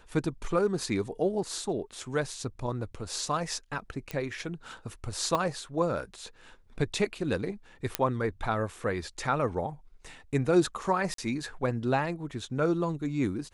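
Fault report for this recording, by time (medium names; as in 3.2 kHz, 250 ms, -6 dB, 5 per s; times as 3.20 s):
4.11 s: pop -19 dBFS
5.35 s: pop -15 dBFS
7.95 s: pop -8 dBFS
11.14–11.18 s: dropout 43 ms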